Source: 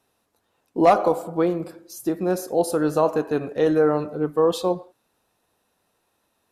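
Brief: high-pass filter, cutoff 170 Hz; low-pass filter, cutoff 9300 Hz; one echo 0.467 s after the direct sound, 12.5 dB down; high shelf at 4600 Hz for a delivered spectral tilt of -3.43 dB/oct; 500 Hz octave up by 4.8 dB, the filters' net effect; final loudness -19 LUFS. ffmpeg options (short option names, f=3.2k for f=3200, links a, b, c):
-af "highpass=170,lowpass=9.3k,equalizer=f=500:t=o:g=5.5,highshelf=f=4.6k:g=-4,aecho=1:1:467:0.237,volume=-0.5dB"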